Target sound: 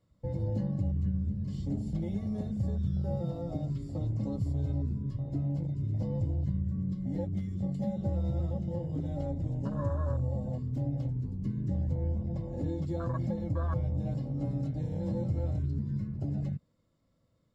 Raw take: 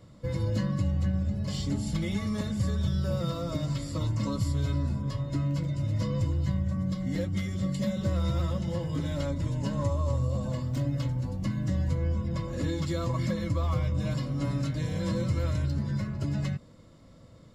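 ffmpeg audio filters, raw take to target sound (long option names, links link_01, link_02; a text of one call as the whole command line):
ffmpeg -i in.wav -af "afwtdn=0.0224,volume=-3dB" out.wav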